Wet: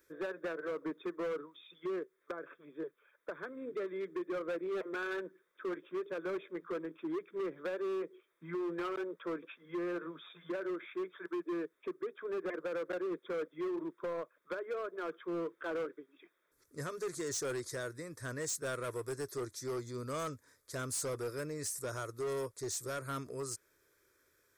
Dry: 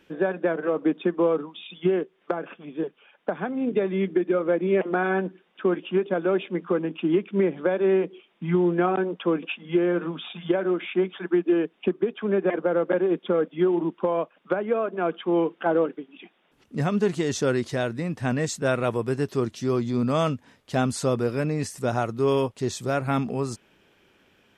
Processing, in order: pre-emphasis filter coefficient 0.8; static phaser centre 780 Hz, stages 6; hard clipper -36.5 dBFS, distortion -11 dB; trim +3 dB

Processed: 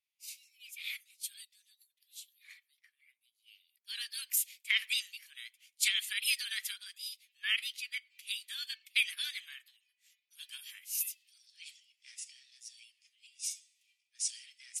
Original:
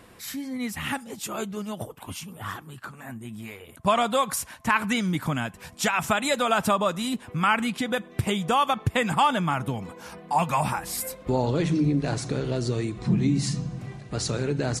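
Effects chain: steep high-pass 1.7 kHz 48 dB/octave; formant shift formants +4 st; three bands expanded up and down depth 100%; trim -6.5 dB

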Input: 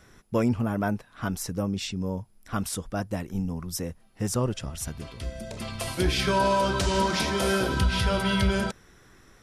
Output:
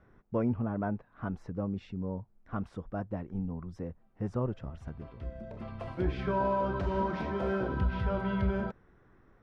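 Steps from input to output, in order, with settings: low-pass 1.3 kHz 12 dB/octave; trim -5.5 dB

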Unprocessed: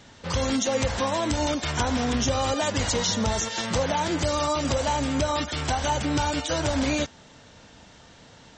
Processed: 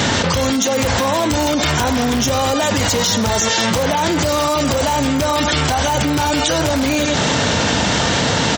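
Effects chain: delay 98 ms -16 dB; in parallel at -7 dB: integer overflow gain 17 dB; on the sum: high-pass 77 Hz; level flattener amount 100%; trim +2.5 dB

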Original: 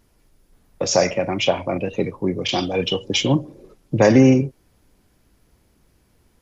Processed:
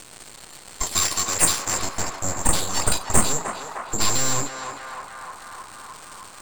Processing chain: band-stop 2.8 kHz, Q 7.5; careless resampling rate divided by 6×, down filtered, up zero stuff; peaking EQ 520 Hz +3 dB 0.31 oct; in parallel at -6 dB: sine folder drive 6 dB, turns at 5.5 dBFS; on the sum: crackle 500 per s -27 dBFS; resonant low-pass 4.3 kHz, resonance Q 6.5; full-wave rectifier; 0.82–1.78 s: tilt EQ +1.5 dB/octave; on a send: band-passed feedback delay 306 ms, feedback 74%, band-pass 1.1 kHz, level -4 dB; on the sum: tape noise reduction on one side only encoder only; trim -11 dB

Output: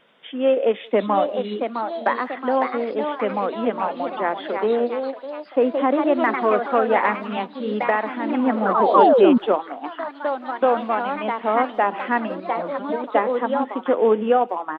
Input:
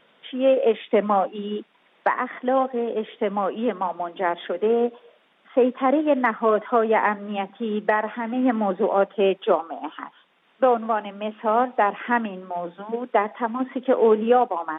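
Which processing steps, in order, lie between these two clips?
painted sound fall, 8.94–9.38 s, 220–1200 Hz -14 dBFS; speakerphone echo 180 ms, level -26 dB; ever faster or slower copies 779 ms, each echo +2 st, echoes 3, each echo -6 dB

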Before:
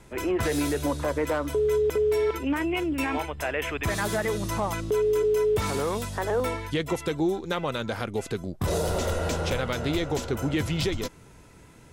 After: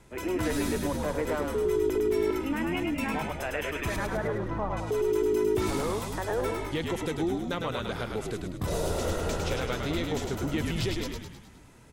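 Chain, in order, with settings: 3.96–4.77 s: low-pass 1.7 kHz 12 dB/octave; on a send: frequency-shifting echo 104 ms, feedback 54%, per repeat -53 Hz, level -4 dB; on the sum: trim -4.5 dB

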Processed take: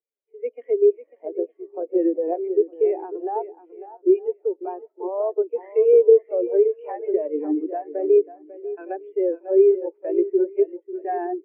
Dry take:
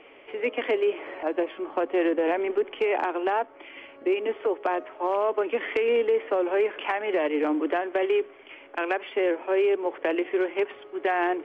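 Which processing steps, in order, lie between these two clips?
shuffle delay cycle 910 ms, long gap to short 1.5:1, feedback 34%, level -6 dB; spectral contrast expander 2.5:1; trim +6.5 dB

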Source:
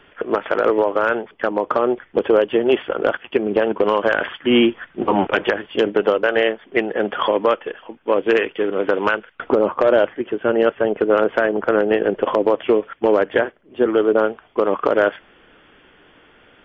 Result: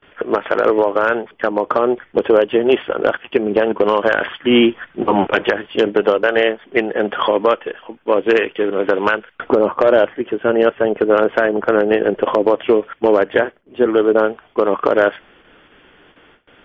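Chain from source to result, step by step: gate with hold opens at -41 dBFS; trim +2.5 dB

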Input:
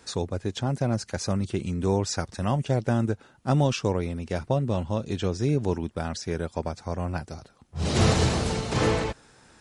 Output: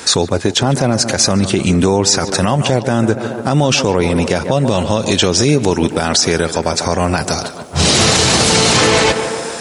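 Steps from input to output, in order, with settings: treble shelf 2.1 kHz +4.5 dB, from 4.51 s +10.5 dB; tape echo 144 ms, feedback 72%, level -14.5 dB, low-pass 2.2 kHz; compression, threshold -27 dBFS, peak gain reduction 12 dB; high-pass 190 Hz 6 dB/octave; loudness maximiser +23.5 dB; trim -1 dB

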